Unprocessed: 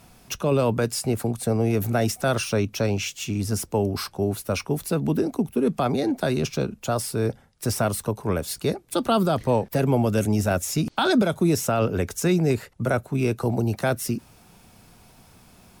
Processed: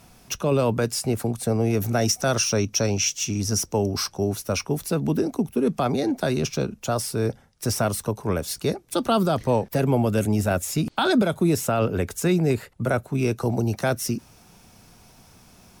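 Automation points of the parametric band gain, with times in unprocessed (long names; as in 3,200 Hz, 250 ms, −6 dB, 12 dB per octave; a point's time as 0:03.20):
parametric band 5,800 Hz 0.31 octaves
0:01.66 +3.5 dB
0:02.13 +13.5 dB
0:04.24 +13.5 dB
0:04.71 +5 dB
0:09.61 +5 dB
0:10.03 −4 dB
0:12.73 −4 dB
0:13.41 +7 dB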